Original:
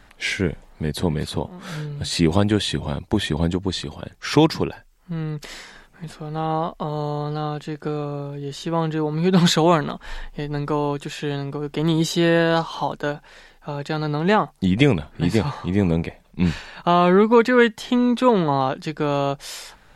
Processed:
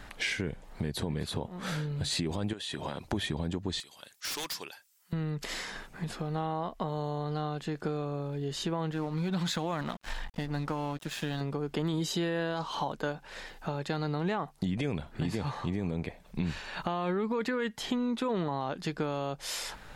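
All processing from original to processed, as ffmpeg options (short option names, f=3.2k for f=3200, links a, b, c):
-filter_complex "[0:a]asettb=1/sr,asplit=3[a][b][c];[a]atrim=end=2.534[d];[b]atrim=start=2.53:end=3.05,asetpts=PTS-STARTPTS,afade=t=in:d=0.004:c=qsin,afade=t=out:st=0.516:d=0.004:c=qsin,highpass=f=450:p=1,acompressor=threshold=-29dB:ratio=10:attack=3.2:release=140:knee=1:detection=peak,bandreject=f=2.2k:w=15[e];[c]atrim=start=3.046[f];[d][e]acrossfade=d=0.004:c1=hsin:c2=qsin[g];[g][f]acrossfade=d=0.004:c1=qsin:c2=hsin,asettb=1/sr,asplit=3[h][i][j];[h]atrim=end=3.804[k];[i]atrim=start=3.8:end=5.13,asetpts=PTS-STARTPTS,afade=t=in:d=0.004:c=qsin,afade=t=out:st=1.326:d=0.004:c=qsin,aderivative,aeval=exprs='0.0282*(abs(mod(val(0)/0.0282+3,4)-2)-1)':c=same[l];[j]atrim=start=5.126[m];[k][l]acrossfade=d=0.004:c1=hsin:c2=qsin[n];[n][m]acrossfade=d=0.004:c1=qsin:c2=hsin,asettb=1/sr,asplit=3[o][p][q];[o]atrim=end=8.914[r];[p]atrim=start=8.91:end=11.41,asetpts=PTS-STARTPTS,afade=t=in:d=0.004:c=qsin,afade=t=out:st=2.496:d=0.004:c=qsin,equalizer=f=410:t=o:w=0.24:g=-14,aeval=exprs='sgn(val(0))*max(abs(val(0))-0.0119,0)':c=same,acompressor=threshold=-19dB:ratio=6:attack=3.2:release=140:knee=1:detection=peak[s];[q]atrim=start=11.406[t];[r][s]acrossfade=d=0.004:c1=hsin:c2=qsin[u];[u][t]acrossfade=d=0.004:c1=qsin:c2=hsin,alimiter=limit=-12.5dB:level=0:latency=1:release=19,acompressor=threshold=-36dB:ratio=3,volume=3dB"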